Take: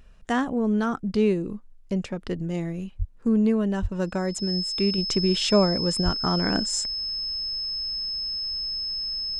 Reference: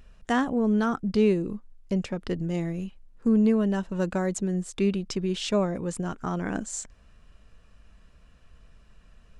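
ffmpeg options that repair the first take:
-filter_complex "[0:a]bandreject=f=5.2k:w=30,asplit=3[a][b][c];[a]afade=t=out:st=2.98:d=0.02[d];[b]highpass=f=140:w=0.5412,highpass=f=140:w=1.3066,afade=t=in:st=2.98:d=0.02,afade=t=out:st=3.1:d=0.02[e];[c]afade=t=in:st=3.1:d=0.02[f];[d][e][f]amix=inputs=3:normalize=0,asplit=3[g][h][i];[g]afade=t=out:st=3.81:d=0.02[j];[h]highpass=f=140:w=0.5412,highpass=f=140:w=1.3066,afade=t=in:st=3.81:d=0.02,afade=t=out:st=3.93:d=0.02[k];[i]afade=t=in:st=3.93:d=0.02[l];[j][k][l]amix=inputs=3:normalize=0,asplit=3[m][n][o];[m]afade=t=out:st=6.04:d=0.02[p];[n]highpass=f=140:w=0.5412,highpass=f=140:w=1.3066,afade=t=in:st=6.04:d=0.02,afade=t=out:st=6.16:d=0.02[q];[o]afade=t=in:st=6.16:d=0.02[r];[p][q][r]amix=inputs=3:normalize=0,asetnsamples=n=441:p=0,asendcmd='4.98 volume volume -5dB',volume=0dB"

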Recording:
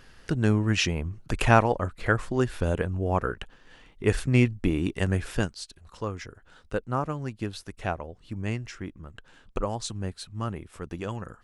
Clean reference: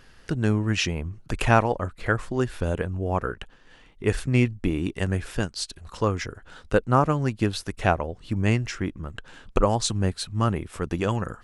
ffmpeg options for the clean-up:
-af "asetnsamples=n=441:p=0,asendcmd='5.54 volume volume 8.5dB',volume=0dB"

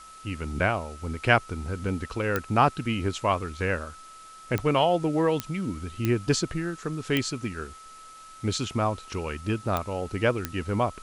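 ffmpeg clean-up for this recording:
-af "adeclick=t=4,bandreject=f=1.3k:w=30,afftdn=nr=25:nf=-47"

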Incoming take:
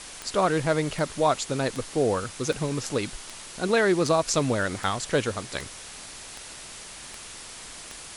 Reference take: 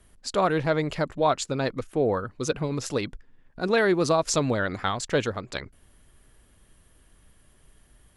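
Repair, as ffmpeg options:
-af "adeclick=t=4,afwtdn=0.011"

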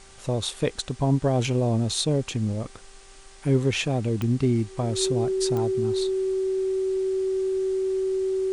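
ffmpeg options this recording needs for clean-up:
-af "adeclick=t=4,bandreject=f=390.2:t=h:w=4,bandreject=f=780.4:t=h:w=4,bandreject=f=1.1706k:t=h:w=4,bandreject=f=1.5608k:t=h:w=4,bandreject=f=1.951k:t=h:w=4,bandreject=f=380:w=30,afwtdn=0.0035"

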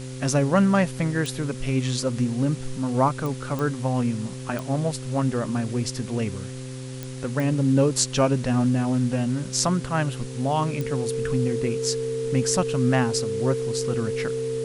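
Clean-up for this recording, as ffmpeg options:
-af "adeclick=t=4,bandreject=f=129.2:t=h:w=4,bandreject=f=258.4:t=h:w=4,bandreject=f=387.6:t=h:w=4,bandreject=f=516.8:t=h:w=4,bandreject=f=450:w=30,afwtdn=0.0071"

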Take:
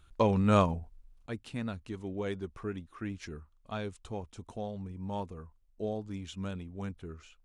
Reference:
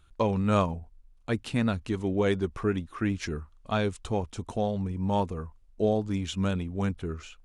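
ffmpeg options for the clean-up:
-af "asetnsamples=n=441:p=0,asendcmd='1.26 volume volume 10dB',volume=0dB"

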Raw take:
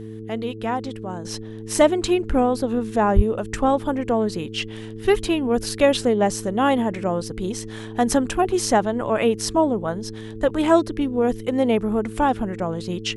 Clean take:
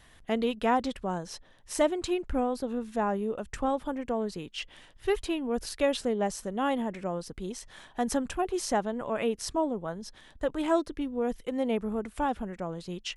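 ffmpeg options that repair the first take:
-filter_complex "[0:a]bandreject=f=109.7:t=h:w=4,bandreject=f=219.4:t=h:w=4,bandreject=f=329.1:t=h:w=4,bandreject=f=438.8:t=h:w=4,asplit=3[a][b][c];[a]afade=t=out:st=3.15:d=0.02[d];[b]highpass=f=140:w=0.5412,highpass=f=140:w=1.3066,afade=t=in:st=3.15:d=0.02,afade=t=out:st=3.27:d=0.02[e];[c]afade=t=in:st=3.27:d=0.02[f];[d][e][f]amix=inputs=3:normalize=0,asetnsamples=n=441:p=0,asendcmd='1.25 volume volume -9.5dB',volume=0dB"

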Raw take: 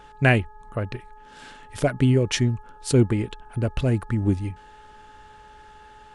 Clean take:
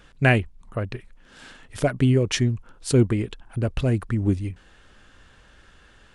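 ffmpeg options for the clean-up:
-af "bandreject=f=420.2:t=h:w=4,bandreject=f=840.4:t=h:w=4,bandreject=f=1.2606k:t=h:w=4,bandreject=f=1.6808k:t=h:w=4,bandreject=f=860:w=30"

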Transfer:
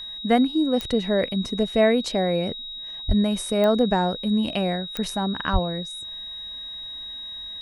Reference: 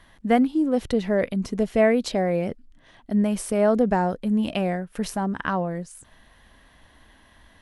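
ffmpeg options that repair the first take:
-filter_complex "[0:a]adeclick=t=4,bandreject=f=3.8k:w=30,asplit=3[a][b][c];[a]afade=t=out:st=3.07:d=0.02[d];[b]highpass=f=140:w=0.5412,highpass=f=140:w=1.3066,afade=t=in:st=3.07:d=0.02,afade=t=out:st=3.19:d=0.02[e];[c]afade=t=in:st=3.19:d=0.02[f];[d][e][f]amix=inputs=3:normalize=0,asplit=3[g][h][i];[g]afade=t=out:st=5.52:d=0.02[j];[h]highpass=f=140:w=0.5412,highpass=f=140:w=1.3066,afade=t=in:st=5.52:d=0.02,afade=t=out:st=5.64:d=0.02[k];[i]afade=t=in:st=5.64:d=0.02[l];[j][k][l]amix=inputs=3:normalize=0"

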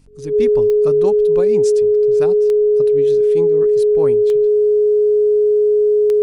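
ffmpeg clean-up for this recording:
-af "adeclick=t=4,bandreject=f=46.3:t=h:w=4,bandreject=f=92.6:t=h:w=4,bandreject=f=138.9:t=h:w=4,bandreject=f=185.2:t=h:w=4,bandreject=f=231.5:t=h:w=4,bandreject=f=277.8:t=h:w=4,bandreject=f=420:w=30"

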